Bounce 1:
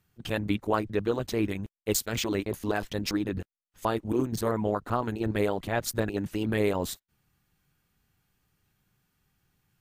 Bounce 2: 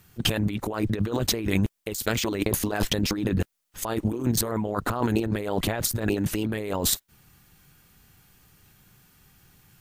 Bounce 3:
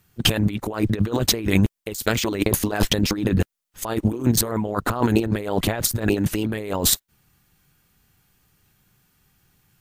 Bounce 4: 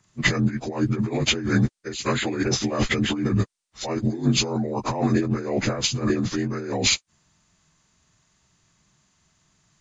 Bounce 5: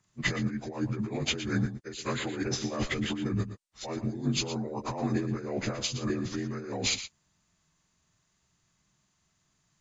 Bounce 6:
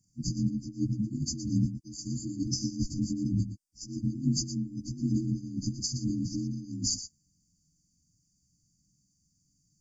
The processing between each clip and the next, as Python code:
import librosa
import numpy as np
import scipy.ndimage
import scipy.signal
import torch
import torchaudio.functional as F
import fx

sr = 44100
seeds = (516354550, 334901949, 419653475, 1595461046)

y1 = fx.high_shelf(x, sr, hz=5100.0, db=5.0)
y1 = fx.over_compress(y1, sr, threshold_db=-35.0, ratio=-1.0)
y1 = y1 * 10.0 ** (8.5 / 20.0)
y2 = fx.upward_expand(y1, sr, threshold_db=-44.0, expansion=1.5)
y2 = y2 * 10.0 ** (6.5 / 20.0)
y3 = fx.partial_stretch(y2, sr, pct=82)
y4 = y3 + 10.0 ** (-11.5 / 20.0) * np.pad(y3, (int(117 * sr / 1000.0), 0))[:len(y3)]
y4 = y4 * 10.0 ** (-8.5 / 20.0)
y5 = fx.brickwall_bandstop(y4, sr, low_hz=330.0, high_hz=4500.0)
y5 = y5 * 10.0 ** (2.0 / 20.0)